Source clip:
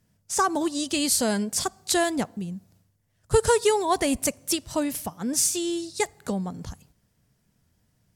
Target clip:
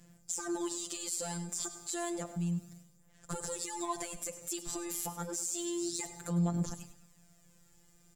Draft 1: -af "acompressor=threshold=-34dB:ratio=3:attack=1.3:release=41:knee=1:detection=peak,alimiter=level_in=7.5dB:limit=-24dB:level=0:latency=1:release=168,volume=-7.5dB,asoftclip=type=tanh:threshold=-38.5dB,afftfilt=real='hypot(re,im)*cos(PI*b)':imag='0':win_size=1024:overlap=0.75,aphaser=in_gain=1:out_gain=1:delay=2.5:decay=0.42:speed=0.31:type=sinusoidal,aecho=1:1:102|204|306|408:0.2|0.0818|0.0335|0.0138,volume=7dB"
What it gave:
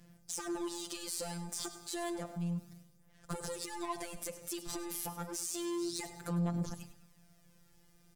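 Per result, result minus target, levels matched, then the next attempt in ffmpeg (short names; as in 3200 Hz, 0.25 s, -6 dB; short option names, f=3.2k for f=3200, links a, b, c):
soft clip: distortion +10 dB; 8000 Hz band -2.5 dB
-af "acompressor=threshold=-34dB:ratio=3:attack=1.3:release=41:knee=1:detection=peak,alimiter=level_in=7.5dB:limit=-24dB:level=0:latency=1:release=168,volume=-7.5dB,asoftclip=type=tanh:threshold=-31.5dB,afftfilt=real='hypot(re,im)*cos(PI*b)':imag='0':win_size=1024:overlap=0.75,aphaser=in_gain=1:out_gain=1:delay=2.5:decay=0.42:speed=0.31:type=sinusoidal,aecho=1:1:102|204|306|408:0.2|0.0818|0.0335|0.0138,volume=7dB"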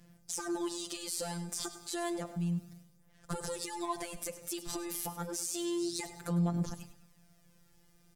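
8000 Hz band -3.0 dB
-af "acompressor=threshold=-34dB:ratio=3:attack=1.3:release=41:knee=1:detection=peak,equalizer=f=7.3k:w=5.2:g=13.5,alimiter=level_in=7.5dB:limit=-24dB:level=0:latency=1:release=168,volume=-7.5dB,asoftclip=type=tanh:threshold=-31.5dB,afftfilt=real='hypot(re,im)*cos(PI*b)':imag='0':win_size=1024:overlap=0.75,aphaser=in_gain=1:out_gain=1:delay=2.5:decay=0.42:speed=0.31:type=sinusoidal,aecho=1:1:102|204|306|408:0.2|0.0818|0.0335|0.0138,volume=7dB"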